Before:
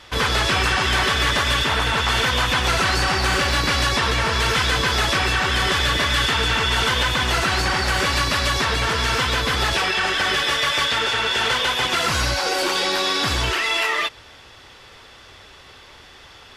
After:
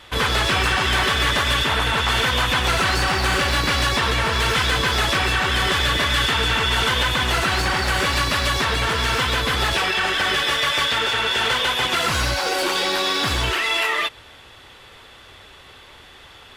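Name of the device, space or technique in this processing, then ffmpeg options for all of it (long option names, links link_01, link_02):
exciter from parts: -filter_complex "[0:a]asplit=2[link_01][link_02];[link_02]highpass=frequency=3900:width=0.5412,highpass=frequency=3900:width=1.3066,asoftclip=type=tanh:threshold=-31.5dB,highpass=3500,volume=-4.5dB[link_03];[link_01][link_03]amix=inputs=2:normalize=0"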